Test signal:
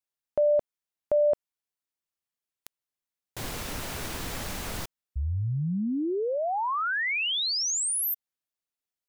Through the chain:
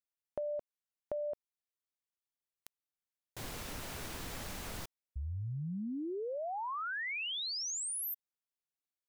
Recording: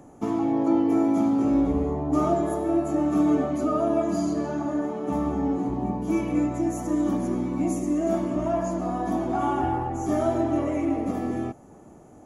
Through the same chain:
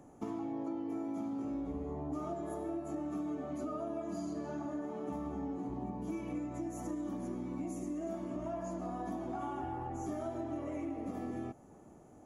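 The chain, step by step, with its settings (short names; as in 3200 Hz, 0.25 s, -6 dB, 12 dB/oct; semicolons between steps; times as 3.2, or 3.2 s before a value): compressor, threshold -28 dBFS; gain -8 dB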